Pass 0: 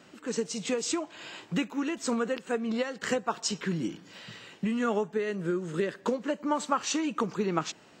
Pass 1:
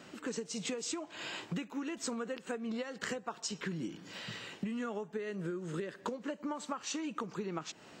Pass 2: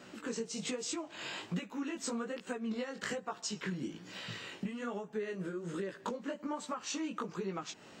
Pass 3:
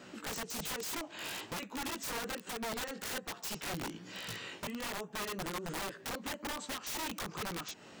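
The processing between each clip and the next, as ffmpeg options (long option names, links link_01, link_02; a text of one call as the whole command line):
ffmpeg -i in.wav -af "acompressor=threshold=-37dB:ratio=10,volume=2dB" out.wav
ffmpeg -i in.wav -af "flanger=delay=15.5:depth=6.6:speed=1.2,volume=3dB" out.wav
ffmpeg -i in.wav -af "aeval=exprs='(mod(53.1*val(0)+1,2)-1)/53.1':channel_layout=same,volume=1dB" out.wav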